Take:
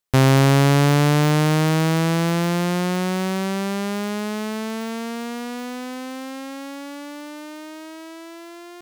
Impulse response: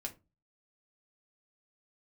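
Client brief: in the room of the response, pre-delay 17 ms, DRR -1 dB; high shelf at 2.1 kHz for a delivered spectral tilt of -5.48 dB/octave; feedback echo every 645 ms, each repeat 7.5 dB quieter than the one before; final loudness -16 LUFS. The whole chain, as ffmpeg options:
-filter_complex "[0:a]highshelf=f=2100:g=4.5,aecho=1:1:645|1290|1935|2580|3225:0.422|0.177|0.0744|0.0312|0.0131,asplit=2[s0][s1];[1:a]atrim=start_sample=2205,adelay=17[s2];[s1][s2]afir=irnorm=-1:irlink=0,volume=1.33[s3];[s0][s3]amix=inputs=2:normalize=0,volume=0.891"

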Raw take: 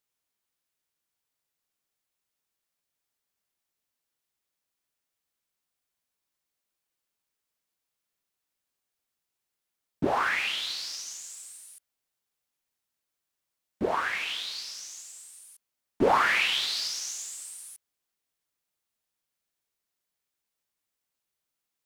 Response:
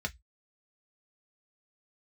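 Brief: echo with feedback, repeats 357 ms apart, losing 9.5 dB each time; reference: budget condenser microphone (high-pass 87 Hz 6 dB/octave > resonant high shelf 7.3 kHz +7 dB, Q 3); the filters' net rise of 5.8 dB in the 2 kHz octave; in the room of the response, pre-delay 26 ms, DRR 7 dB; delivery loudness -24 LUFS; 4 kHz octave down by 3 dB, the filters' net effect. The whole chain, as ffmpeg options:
-filter_complex "[0:a]equalizer=f=2000:t=o:g=9,equalizer=f=4000:t=o:g=-5.5,aecho=1:1:357|714|1071|1428:0.335|0.111|0.0365|0.012,asplit=2[s0][s1];[1:a]atrim=start_sample=2205,adelay=26[s2];[s1][s2]afir=irnorm=-1:irlink=0,volume=0.299[s3];[s0][s3]amix=inputs=2:normalize=0,highpass=f=87:p=1,highshelf=f=7300:t=q:w=3:g=7,volume=1.12"

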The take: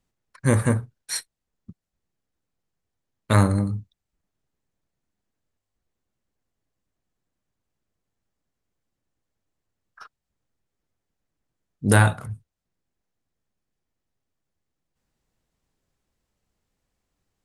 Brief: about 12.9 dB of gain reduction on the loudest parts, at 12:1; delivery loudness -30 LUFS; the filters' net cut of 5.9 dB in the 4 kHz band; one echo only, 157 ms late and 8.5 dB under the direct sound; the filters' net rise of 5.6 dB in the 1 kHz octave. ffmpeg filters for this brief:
-af "equalizer=f=1000:t=o:g=7.5,equalizer=f=4000:t=o:g=-7.5,acompressor=threshold=0.0794:ratio=12,aecho=1:1:157:0.376,volume=1.06"

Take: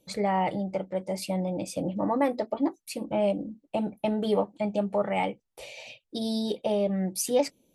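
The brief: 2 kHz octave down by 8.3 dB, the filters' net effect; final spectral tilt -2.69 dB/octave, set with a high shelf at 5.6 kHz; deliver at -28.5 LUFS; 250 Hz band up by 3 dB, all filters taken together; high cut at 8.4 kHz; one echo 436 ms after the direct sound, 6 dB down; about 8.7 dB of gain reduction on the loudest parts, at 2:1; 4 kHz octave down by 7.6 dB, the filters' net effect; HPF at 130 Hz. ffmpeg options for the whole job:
-af "highpass=130,lowpass=8400,equalizer=f=250:t=o:g=4.5,equalizer=f=2000:t=o:g=-7.5,equalizer=f=4000:t=o:g=-6,highshelf=f=5600:g=-3,acompressor=threshold=0.02:ratio=2,aecho=1:1:436:0.501,volume=1.78"

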